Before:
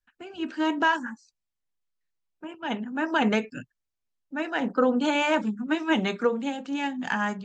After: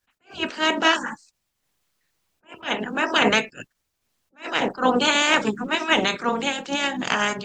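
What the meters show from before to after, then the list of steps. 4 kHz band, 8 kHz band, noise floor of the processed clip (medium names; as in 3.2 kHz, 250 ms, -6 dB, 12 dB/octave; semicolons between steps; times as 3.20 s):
+12.0 dB, no reading, -77 dBFS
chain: spectral peaks clipped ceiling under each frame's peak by 20 dB; attacks held to a fixed rise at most 250 dB/s; trim +5 dB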